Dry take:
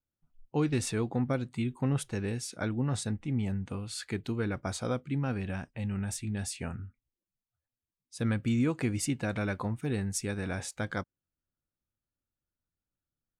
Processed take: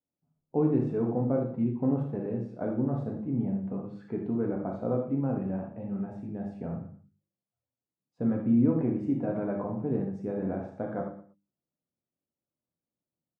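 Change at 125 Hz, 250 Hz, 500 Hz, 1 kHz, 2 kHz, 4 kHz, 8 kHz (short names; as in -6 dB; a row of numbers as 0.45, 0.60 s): -1.0 dB, +4.5 dB, +5.0 dB, +0.5 dB, under -10 dB, under -25 dB, under -35 dB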